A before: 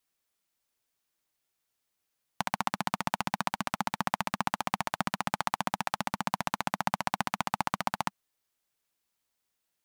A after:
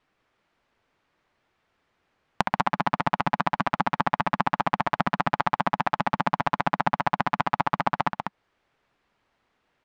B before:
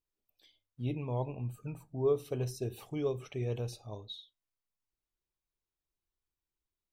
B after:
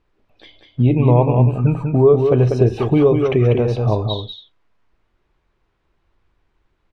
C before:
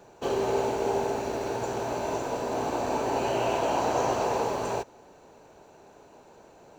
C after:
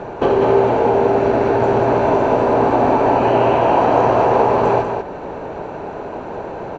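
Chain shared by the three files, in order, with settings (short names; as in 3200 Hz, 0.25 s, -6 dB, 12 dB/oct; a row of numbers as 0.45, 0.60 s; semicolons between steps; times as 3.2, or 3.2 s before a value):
LPF 2000 Hz 12 dB/oct; compressor 2.5:1, threshold -42 dBFS; on a send: echo 0.193 s -5.5 dB; on the sum: normalise peaks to -1.5 dBFS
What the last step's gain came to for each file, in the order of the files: +17.5, +28.0, +24.0 dB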